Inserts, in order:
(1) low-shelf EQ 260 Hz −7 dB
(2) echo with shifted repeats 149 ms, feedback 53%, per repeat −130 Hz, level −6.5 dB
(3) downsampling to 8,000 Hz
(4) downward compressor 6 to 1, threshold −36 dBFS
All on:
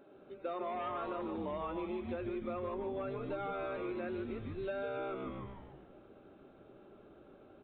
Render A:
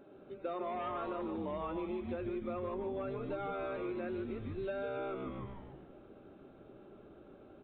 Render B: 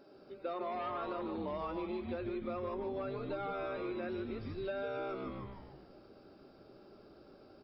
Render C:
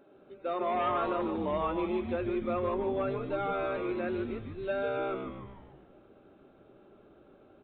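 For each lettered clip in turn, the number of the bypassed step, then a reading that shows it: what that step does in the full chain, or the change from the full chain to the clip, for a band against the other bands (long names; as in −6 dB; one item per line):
1, 125 Hz band +1.5 dB
3, 4 kHz band +2.5 dB
4, average gain reduction 4.0 dB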